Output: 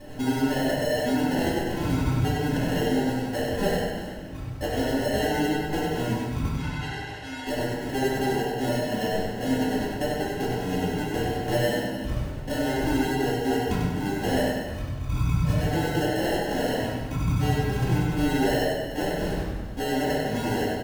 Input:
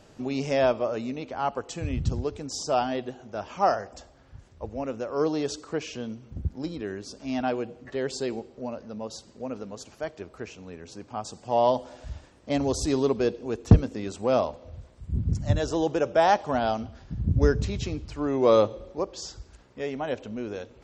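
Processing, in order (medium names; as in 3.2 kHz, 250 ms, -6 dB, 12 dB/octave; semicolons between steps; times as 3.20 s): comb 7 ms, depth 63%; compression 12:1, threshold -35 dBFS, peak gain reduction 26.5 dB; sample-and-hold 37×; 6.57–7.47 s: band-pass filter 2.5 kHz, Q 0.74; feedback delay 97 ms, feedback 45%, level -5.5 dB; reverberation RT60 1.1 s, pre-delay 4 ms, DRR -8.5 dB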